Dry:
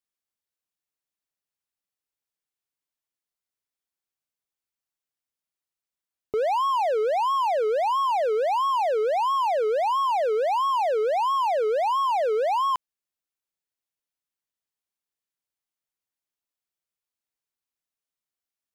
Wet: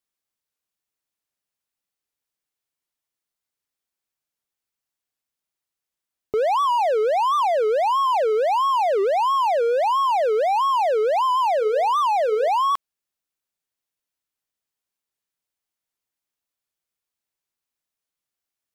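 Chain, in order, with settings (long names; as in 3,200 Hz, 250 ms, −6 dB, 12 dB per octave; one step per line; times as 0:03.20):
0:11.44–0:12.48: mains-hum notches 50/100/150/200/250/300/350/400/450/500 Hz
wow of a warped record 78 rpm, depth 160 cents
level +3.5 dB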